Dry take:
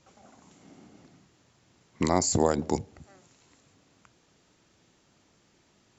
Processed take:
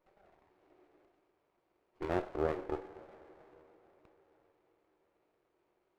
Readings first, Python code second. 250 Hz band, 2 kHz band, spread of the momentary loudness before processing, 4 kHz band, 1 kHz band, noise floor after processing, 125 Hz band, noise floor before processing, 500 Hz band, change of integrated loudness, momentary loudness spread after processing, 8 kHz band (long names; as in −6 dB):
−12.5 dB, −6.5 dB, 9 LU, −20.5 dB, −11.0 dB, −79 dBFS, −13.5 dB, −66 dBFS, −7.5 dB, −10.5 dB, 19 LU, can't be measured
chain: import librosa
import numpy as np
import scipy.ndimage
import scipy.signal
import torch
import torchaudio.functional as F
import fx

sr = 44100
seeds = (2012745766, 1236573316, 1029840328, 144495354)

y = fx.brickwall_bandpass(x, sr, low_hz=300.0, high_hz=2400.0)
y = fx.rev_double_slope(y, sr, seeds[0], early_s=0.39, late_s=4.7, knee_db=-17, drr_db=6.0)
y = fx.running_max(y, sr, window=17)
y = F.gain(torch.from_numpy(y), -8.5).numpy()